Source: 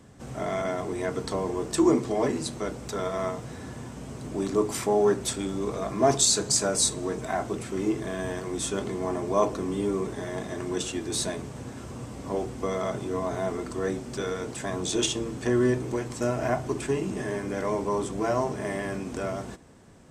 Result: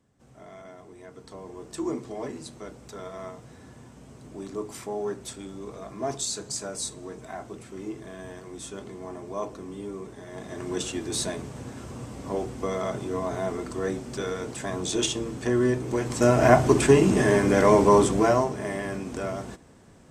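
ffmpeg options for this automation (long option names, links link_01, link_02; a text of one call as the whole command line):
ffmpeg -i in.wav -af "volume=10.5dB,afade=type=in:start_time=1.11:duration=0.81:silence=0.421697,afade=type=in:start_time=10.26:duration=0.52:silence=0.354813,afade=type=in:start_time=15.85:duration=0.72:silence=0.298538,afade=type=out:start_time=17.97:duration=0.53:silence=0.298538" out.wav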